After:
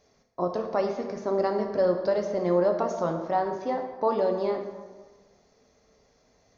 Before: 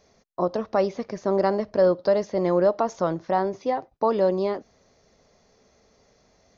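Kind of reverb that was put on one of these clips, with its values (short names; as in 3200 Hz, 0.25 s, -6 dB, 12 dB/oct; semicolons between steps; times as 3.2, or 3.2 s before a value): plate-style reverb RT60 1.4 s, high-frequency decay 0.6×, DRR 3.5 dB; gain -4.5 dB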